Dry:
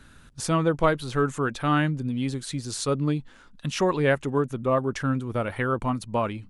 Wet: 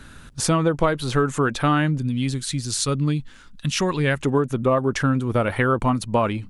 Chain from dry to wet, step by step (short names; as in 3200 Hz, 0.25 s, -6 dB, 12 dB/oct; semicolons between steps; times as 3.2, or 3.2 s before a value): 1.98–4.2 bell 600 Hz -10 dB 2.5 oct; compressor 6:1, threshold -23 dBFS, peak gain reduction 8.5 dB; gain +8 dB